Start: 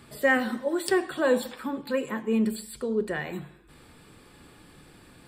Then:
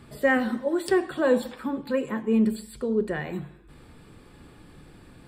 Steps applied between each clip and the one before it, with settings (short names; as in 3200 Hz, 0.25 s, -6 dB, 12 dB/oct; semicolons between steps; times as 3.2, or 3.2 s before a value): tilt -1.5 dB/oct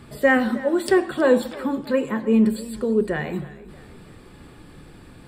warbling echo 0.318 s, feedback 46%, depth 75 cents, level -19 dB; gain +4.5 dB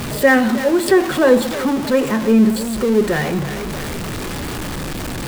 zero-crossing step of -24 dBFS; gain +3.5 dB